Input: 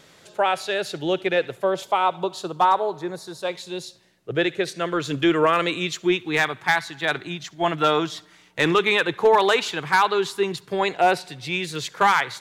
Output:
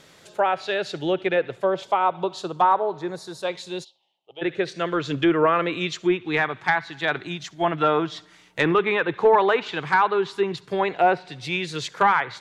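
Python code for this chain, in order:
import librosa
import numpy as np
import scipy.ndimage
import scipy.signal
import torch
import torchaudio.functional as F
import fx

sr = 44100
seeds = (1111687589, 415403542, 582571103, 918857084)

y = fx.env_lowpass_down(x, sr, base_hz=2000.0, full_db=-17.0)
y = fx.double_bandpass(y, sr, hz=1600.0, octaves=1.9, at=(3.83, 4.41), fade=0.02)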